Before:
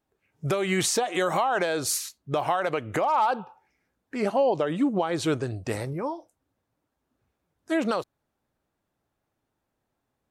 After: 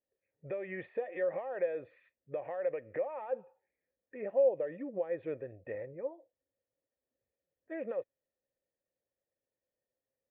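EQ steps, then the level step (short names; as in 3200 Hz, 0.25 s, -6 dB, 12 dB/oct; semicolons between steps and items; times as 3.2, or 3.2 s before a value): vocal tract filter e; air absorption 140 m; -1.0 dB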